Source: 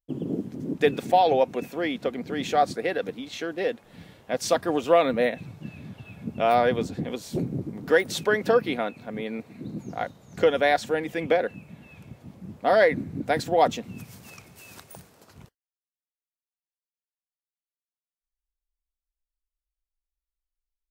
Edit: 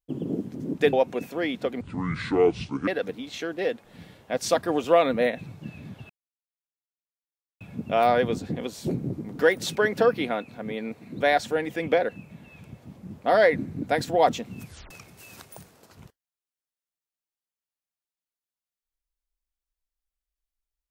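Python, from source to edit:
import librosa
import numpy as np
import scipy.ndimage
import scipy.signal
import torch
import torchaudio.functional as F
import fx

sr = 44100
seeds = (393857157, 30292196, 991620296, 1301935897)

y = fx.edit(x, sr, fx.cut(start_s=0.93, length_s=0.41),
    fx.speed_span(start_s=2.22, length_s=0.65, speed=0.61),
    fx.insert_silence(at_s=6.09, length_s=1.51),
    fx.cut(start_s=9.69, length_s=0.9),
    fx.tape_stop(start_s=14.04, length_s=0.25), tone=tone)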